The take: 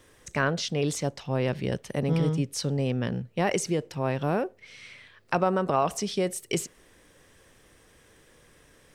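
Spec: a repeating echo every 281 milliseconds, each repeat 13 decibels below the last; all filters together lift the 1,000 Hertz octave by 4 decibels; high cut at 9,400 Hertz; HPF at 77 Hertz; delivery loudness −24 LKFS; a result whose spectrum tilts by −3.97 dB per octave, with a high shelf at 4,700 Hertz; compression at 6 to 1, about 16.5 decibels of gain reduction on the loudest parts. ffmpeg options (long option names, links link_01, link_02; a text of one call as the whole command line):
ffmpeg -i in.wav -af "highpass=77,lowpass=9400,equalizer=frequency=1000:width_type=o:gain=5,highshelf=frequency=4700:gain=8.5,acompressor=threshold=-35dB:ratio=6,aecho=1:1:281|562|843:0.224|0.0493|0.0108,volume=15dB" out.wav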